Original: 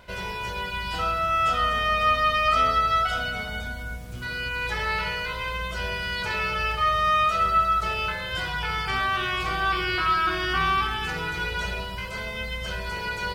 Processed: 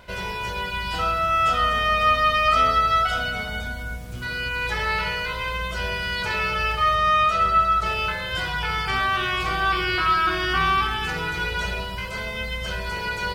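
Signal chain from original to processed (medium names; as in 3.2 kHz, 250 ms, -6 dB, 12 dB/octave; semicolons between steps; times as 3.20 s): 6.95–7.86 s: treble shelf 11 kHz -8.5 dB; trim +2.5 dB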